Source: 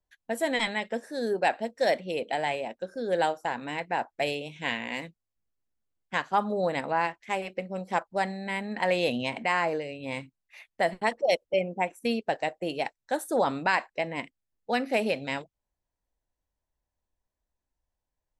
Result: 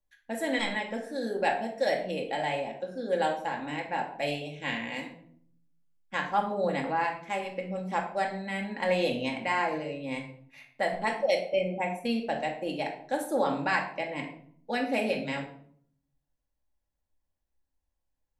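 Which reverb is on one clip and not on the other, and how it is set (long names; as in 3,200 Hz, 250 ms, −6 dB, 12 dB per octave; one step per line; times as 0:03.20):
rectangular room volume 930 cubic metres, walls furnished, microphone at 2.3 metres
level −4.5 dB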